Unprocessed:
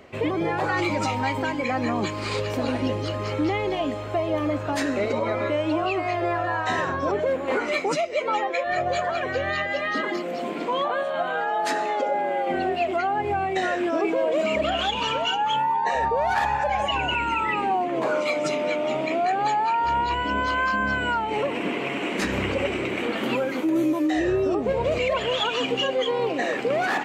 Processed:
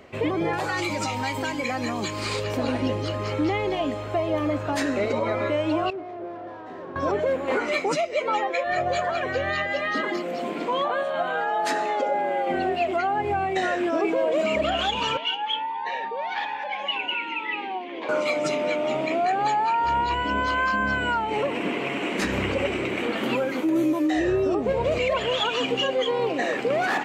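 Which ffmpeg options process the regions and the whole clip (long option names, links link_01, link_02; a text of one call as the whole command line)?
ffmpeg -i in.wav -filter_complex "[0:a]asettb=1/sr,asplit=3[link_01][link_02][link_03];[link_01]atrim=end=0.534[link_04];[link_02]atrim=start=0.53:end=2.44,asetpts=PTS-STARTPTS,afade=type=in:duration=0.004:curve=qsin,afade=type=out:start_time=1.906:duration=0.004:curve=qsin,highshelf=frequency=4400:gain=10.5,acrossover=split=2700|7500[link_05][link_06][link_07];[link_05]acompressor=threshold=-25dB:ratio=4[link_08];[link_06]acompressor=threshold=-34dB:ratio=4[link_09];[link_07]acompressor=threshold=-46dB:ratio=4[link_10];[link_08][link_09][link_10]amix=inputs=3:normalize=0,asoftclip=type=hard:threshold=-17.5dB[link_11];[link_03]atrim=start=2.436[link_12];[link_04][link_11]acrossfade=duration=0.004:curve1=hsin:curve2=qsin[link_13];[link_13][link_12]acrossfade=duration=0.004:curve1=qsin:curve2=hsin,asettb=1/sr,asplit=3[link_14][link_15][link_16];[link_14]atrim=end=5.904[link_17];[link_15]atrim=start=5.9:end=6.96,asetpts=PTS-STARTPTS,afade=type=in:duration=0.004:curve=qsin,afade=type=out:start_time=1.056:duration=0.004:curve=qsin,volume=29dB,asoftclip=hard,volume=-29dB,bandpass=frequency=370:width_type=q:width=1.3[link_18];[link_16]atrim=start=6.956[link_19];[link_17][link_18]acrossfade=duration=0.004:curve1=hsin:curve2=qsin[link_20];[link_20][link_19]acrossfade=duration=0.004:curve1=qsin:curve2=hsin,asettb=1/sr,asplit=3[link_21][link_22][link_23];[link_21]atrim=end=15.174[link_24];[link_22]atrim=start=15.17:end=18.09,asetpts=PTS-STARTPTS,afade=type=in:duration=0.004:curve=qsin,afade=type=out:start_time=2.916:duration=0.004:curve=qsin,highpass=frequency=260:width=0.5412,highpass=frequency=260:width=1.3066,equalizer=frequency=390:width_type=q:width=4:gain=-4,equalizer=frequency=660:width_type=q:width=4:gain=-8,equalizer=frequency=1300:width_type=q:width=4:gain=-8,equalizer=frequency=2200:width_type=q:width=4:gain=6,equalizer=frequency=3300:width_type=q:width=4:gain=9,lowpass=frequency=4900:width=0.5412,lowpass=frequency=4900:width=1.3066,flanger=delay=4.8:depth=1.9:regen=67:speed=1.1:shape=triangular[link_25];[link_23]atrim=start=18.086[link_26];[link_24][link_25]acrossfade=duration=0.004:curve1=hsin:curve2=qsin[link_27];[link_27][link_26]acrossfade=duration=0.004:curve1=qsin:curve2=hsin" out.wav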